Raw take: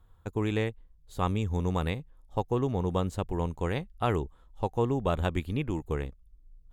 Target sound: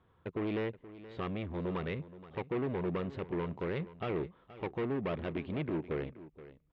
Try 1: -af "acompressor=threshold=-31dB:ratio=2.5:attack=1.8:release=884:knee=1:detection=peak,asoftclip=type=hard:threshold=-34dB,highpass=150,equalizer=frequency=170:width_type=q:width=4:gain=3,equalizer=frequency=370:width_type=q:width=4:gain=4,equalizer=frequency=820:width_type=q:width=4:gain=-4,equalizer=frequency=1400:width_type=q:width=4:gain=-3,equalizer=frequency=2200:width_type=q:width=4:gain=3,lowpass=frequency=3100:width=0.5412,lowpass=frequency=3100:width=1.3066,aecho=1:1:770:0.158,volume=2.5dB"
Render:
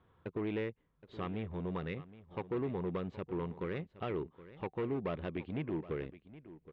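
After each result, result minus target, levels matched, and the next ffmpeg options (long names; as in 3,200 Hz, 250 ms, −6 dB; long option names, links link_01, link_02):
echo 295 ms late; downward compressor: peak gain reduction +5.5 dB
-af "acompressor=threshold=-31dB:ratio=2.5:attack=1.8:release=884:knee=1:detection=peak,asoftclip=type=hard:threshold=-34dB,highpass=150,equalizer=frequency=170:width_type=q:width=4:gain=3,equalizer=frequency=370:width_type=q:width=4:gain=4,equalizer=frequency=820:width_type=q:width=4:gain=-4,equalizer=frequency=1400:width_type=q:width=4:gain=-3,equalizer=frequency=2200:width_type=q:width=4:gain=3,lowpass=frequency=3100:width=0.5412,lowpass=frequency=3100:width=1.3066,aecho=1:1:475:0.158,volume=2.5dB"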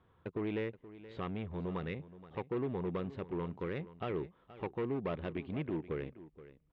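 downward compressor: peak gain reduction +5.5 dB
-af "acompressor=threshold=-21.5dB:ratio=2.5:attack=1.8:release=884:knee=1:detection=peak,asoftclip=type=hard:threshold=-34dB,highpass=150,equalizer=frequency=170:width_type=q:width=4:gain=3,equalizer=frequency=370:width_type=q:width=4:gain=4,equalizer=frequency=820:width_type=q:width=4:gain=-4,equalizer=frequency=1400:width_type=q:width=4:gain=-3,equalizer=frequency=2200:width_type=q:width=4:gain=3,lowpass=frequency=3100:width=0.5412,lowpass=frequency=3100:width=1.3066,aecho=1:1:475:0.158,volume=2.5dB"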